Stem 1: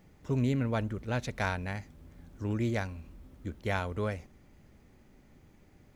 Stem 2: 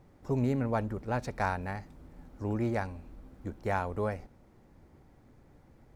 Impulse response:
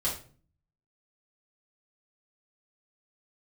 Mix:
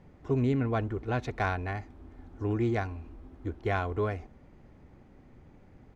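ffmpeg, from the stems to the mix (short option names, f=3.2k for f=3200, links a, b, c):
-filter_complex "[0:a]aemphasis=mode=reproduction:type=75fm,volume=1.5dB[a];[1:a]lowpass=1.7k,acompressor=threshold=-31dB:ratio=6,adelay=2.9,volume=0dB[b];[a][b]amix=inputs=2:normalize=0"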